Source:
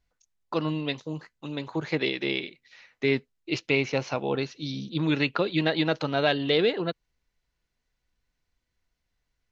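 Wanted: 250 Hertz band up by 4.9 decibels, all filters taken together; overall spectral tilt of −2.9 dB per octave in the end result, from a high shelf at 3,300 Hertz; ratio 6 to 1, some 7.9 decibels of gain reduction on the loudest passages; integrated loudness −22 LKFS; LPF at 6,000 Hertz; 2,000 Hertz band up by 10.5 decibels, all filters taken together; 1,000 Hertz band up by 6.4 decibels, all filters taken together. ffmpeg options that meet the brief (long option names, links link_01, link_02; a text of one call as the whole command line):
ffmpeg -i in.wav -af "lowpass=6000,equalizer=frequency=250:width_type=o:gain=6,equalizer=frequency=1000:width_type=o:gain=5,equalizer=frequency=2000:width_type=o:gain=9,highshelf=frequency=3300:gain=8,acompressor=threshold=-20dB:ratio=6,volume=4dB" out.wav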